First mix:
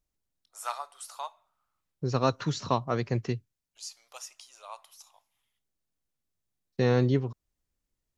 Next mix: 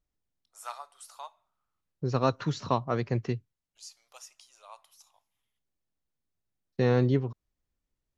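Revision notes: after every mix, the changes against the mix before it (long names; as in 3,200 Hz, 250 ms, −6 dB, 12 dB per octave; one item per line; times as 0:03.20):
first voice −5.5 dB
second voice: add low-pass filter 3,700 Hz 6 dB per octave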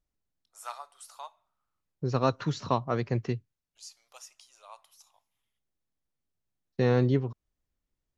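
nothing changed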